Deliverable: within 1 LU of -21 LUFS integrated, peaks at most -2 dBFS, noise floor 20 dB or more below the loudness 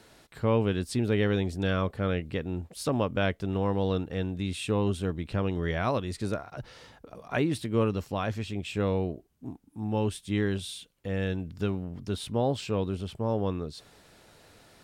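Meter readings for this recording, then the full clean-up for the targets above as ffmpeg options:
loudness -30.0 LUFS; peak level -12.5 dBFS; loudness target -21.0 LUFS
-> -af "volume=2.82"

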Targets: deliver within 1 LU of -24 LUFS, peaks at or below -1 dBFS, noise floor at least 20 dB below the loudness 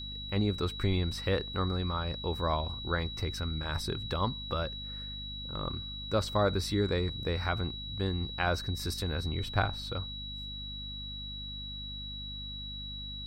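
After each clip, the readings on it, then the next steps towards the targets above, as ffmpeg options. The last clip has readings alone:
hum 50 Hz; highest harmonic 250 Hz; hum level -42 dBFS; steady tone 3.9 kHz; tone level -40 dBFS; loudness -33.5 LUFS; peak level -13.0 dBFS; loudness target -24.0 LUFS
-> -af "bandreject=f=50:t=h:w=4,bandreject=f=100:t=h:w=4,bandreject=f=150:t=h:w=4,bandreject=f=200:t=h:w=4,bandreject=f=250:t=h:w=4"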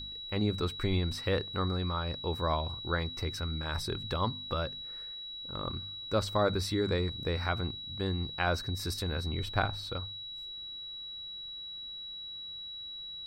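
hum not found; steady tone 3.9 kHz; tone level -40 dBFS
-> -af "bandreject=f=3900:w=30"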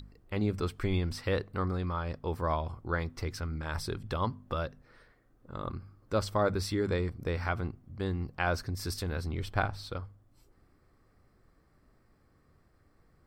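steady tone not found; loudness -34.0 LUFS; peak level -12.5 dBFS; loudness target -24.0 LUFS
-> -af "volume=3.16"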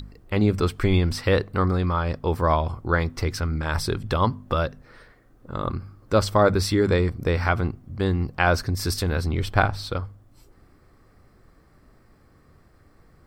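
loudness -24.0 LUFS; peak level -2.5 dBFS; noise floor -57 dBFS

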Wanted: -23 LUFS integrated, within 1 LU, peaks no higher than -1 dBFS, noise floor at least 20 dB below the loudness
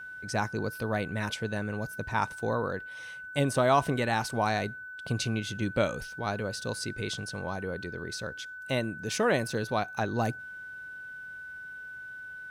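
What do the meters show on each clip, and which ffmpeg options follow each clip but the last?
steady tone 1.5 kHz; tone level -40 dBFS; loudness -31.5 LUFS; peak level -11.0 dBFS; loudness target -23.0 LUFS
-> -af "bandreject=f=1500:w=30"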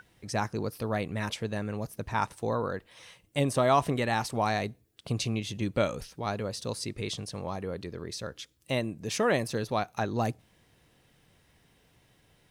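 steady tone not found; loudness -31.5 LUFS; peak level -11.5 dBFS; loudness target -23.0 LUFS
-> -af "volume=2.66"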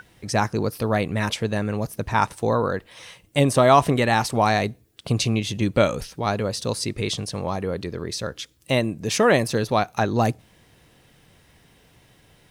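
loudness -23.0 LUFS; peak level -3.0 dBFS; noise floor -57 dBFS

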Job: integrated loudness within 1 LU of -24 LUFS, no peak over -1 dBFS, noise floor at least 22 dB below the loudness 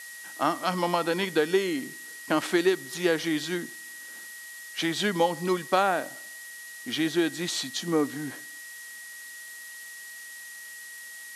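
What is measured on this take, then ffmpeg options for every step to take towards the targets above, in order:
steady tone 1.9 kHz; tone level -42 dBFS; noise floor -43 dBFS; noise floor target -50 dBFS; loudness -27.5 LUFS; peak level -10.5 dBFS; loudness target -24.0 LUFS
-> -af "bandreject=f=1900:w=30"
-af "afftdn=nr=7:nf=-43"
-af "volume=1.5"

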